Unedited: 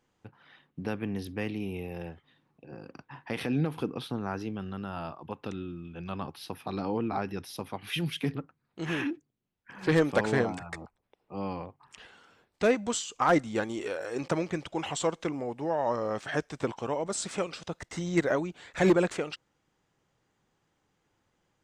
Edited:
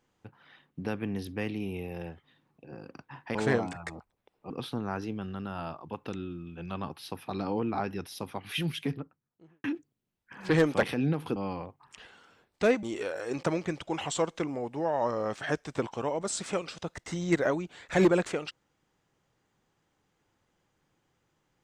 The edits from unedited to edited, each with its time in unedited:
0:03.35–0:03.88: swap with 0:10.21–0:11.36
0:08.02–0:09.02: fade out and dull
0:12.83–0:13.68: remove

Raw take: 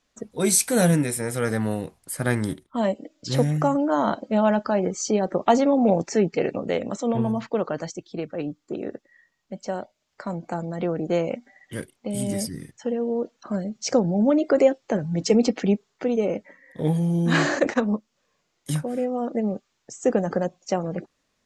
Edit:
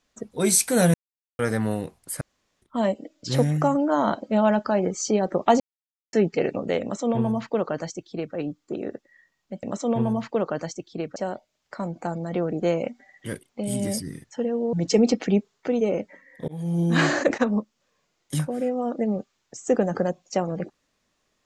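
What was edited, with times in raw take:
0:00.94–0:01.39: silence
0:02.21–0:02.62: fill with room tone
0:05.60–0:06.13: silence
0:06.82–0:08.35: duplicate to 0:09.63
0:13.20–0:15.09: remove
0:16.84–0:17.16: fade in

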